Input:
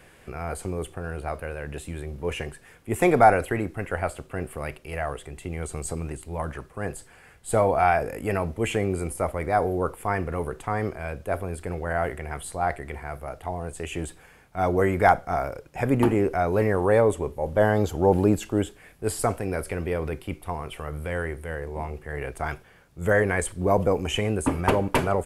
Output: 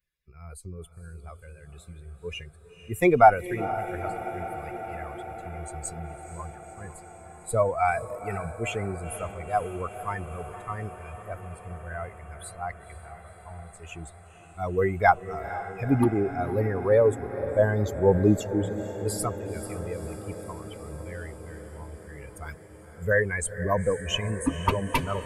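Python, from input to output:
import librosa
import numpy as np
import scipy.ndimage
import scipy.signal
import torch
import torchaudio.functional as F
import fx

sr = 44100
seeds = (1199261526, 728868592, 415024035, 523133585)

p1 = fx.bin_expand(x, sr, power=2.0)
p2 = fx.high_shelf(p1, sr, hz=5200.0, db=11.5, at=(22.14, 23.05))
p3 = p2 + fx.echo_diffused(p2, sr, ms=486, feedback_pct=76, wet_db=-13.0, dry=0)
y = F.gain(torch.from_numpy(p3), 3.0).numpy()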